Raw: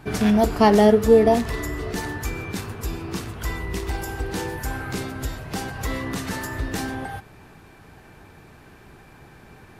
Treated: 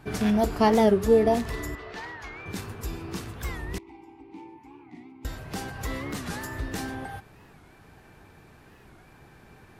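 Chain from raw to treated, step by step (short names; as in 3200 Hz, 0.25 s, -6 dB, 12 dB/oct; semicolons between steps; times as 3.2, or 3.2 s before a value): 1.75–2.46 three-band isolator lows -13 dB, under 510 Hz, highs -23 dB, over 4700 Hz; 3.78–5.25 vowel filter u; record warp 45 rpm, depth 160 cents; gain -5 dB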